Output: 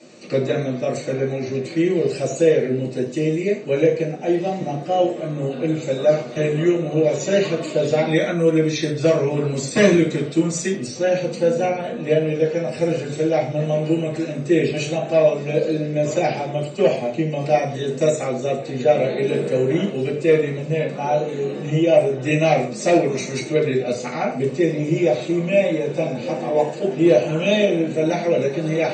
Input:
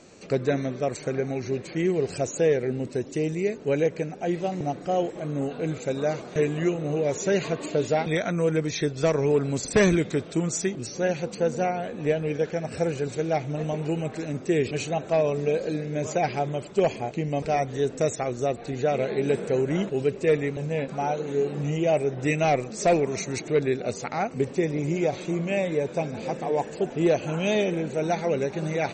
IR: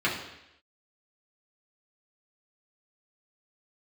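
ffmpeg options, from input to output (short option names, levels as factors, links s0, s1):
-filter_complex "[1:a]atrim=start_sample=2205,afade=t=out:st=0.31:d=0.01,atrim=end_sample=14112,asetrate=74970,aresample=44100[s0];[0:a][s0]afir=irnorm=-1:irlink=0,volume=0.75"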